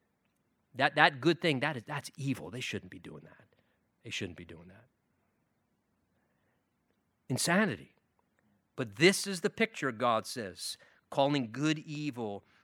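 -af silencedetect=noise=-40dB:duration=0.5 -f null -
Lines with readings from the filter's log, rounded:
silence_start: 0.00
silence_end: 0.79 | silence_duration: 0.79
silence_start: 3.17
silence_end: 4.06 | silence_duration: 0.89
silence_start: 4.52
silence_end: 7.30 | silence_duration: 2.78
silence_start: 7.75
silence_end: 8.78 | silence_duration: 1.03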